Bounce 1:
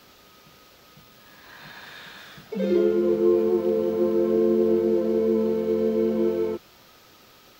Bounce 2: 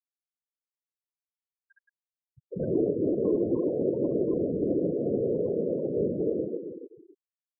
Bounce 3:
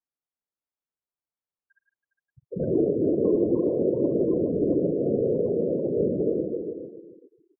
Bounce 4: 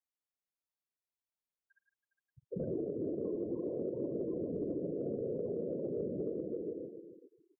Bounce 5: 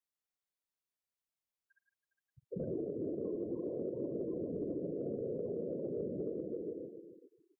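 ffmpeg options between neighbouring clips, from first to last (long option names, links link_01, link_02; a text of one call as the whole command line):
ffmpeg -i in.wav -filter_complex "[0:a]asplit=2[link_01][link_02];[link_02]adelay=279,lowpass=frequency=4600:poles=1,volume=-8.5dB,asplit=2[link_03][link_04];[link_04]adelay=279,lowpass=frequency=4600:poles=1,volume=0.41,asplit=2[link_05][link_06];[link_06]adelay=279,lowpass=frequency=4600:poles=1,volume=0.41,asplit=2[link_07][link_08];[link_08]adelay=279,lowpass=frequency=4600:poles=1,volume=0.41,asplit=2[link_09][link_10];[link_10]adelay=279,lowpass=frequency=4600:poles=1,volume=0.41[link_11];[link_01][link_03][link_05][link_07][link_09][link_11]amix=inputs=6:normalize=0,afftfilt=real='hypot(re,im)*cos(2*PI*random(0))':imag='hypot(re,im)*sin(2*PI*random(1))':win_size=512:overlap=0.75,afftfilt=real='re*gte(hypot(re,im),0.0316)':imag='im*gte(hypot(re,im),0.0316)':win_size=1024:overlap=0.75" out.wav
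ffmpeg -i in.wav -filter_complex "[0:a]lowpass=1300,asplit=2[link_01][link_02];[link_02]aecho=0:1:49|153|409:0.112|0.2|0.224[link_03];[link_01][link_03]amix=inputs=2:normalize=0,volume=3dB" out.wav
ffmpeg -i in.wav -af "acompressor=threshold=-28dB:ratio=6,volume=-6dB" out.wav
ffmpeg -i in.wav -af "bandreject=frequency=870:width=22,volume=-1.5dB" out.wav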